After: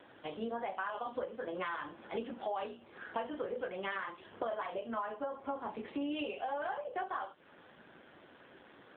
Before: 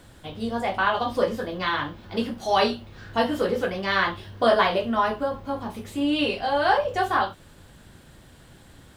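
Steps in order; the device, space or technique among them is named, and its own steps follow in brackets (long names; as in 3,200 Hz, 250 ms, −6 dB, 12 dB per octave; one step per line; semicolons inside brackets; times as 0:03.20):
voicemail (band-pass filter 340–2,900 Hz; downward compressor 10 to 1, threshold −35 dBFS, peak gain reduction 20 dB; level +1 dB; AMR narrowband 7.4 kbit/s 8,000 Hz)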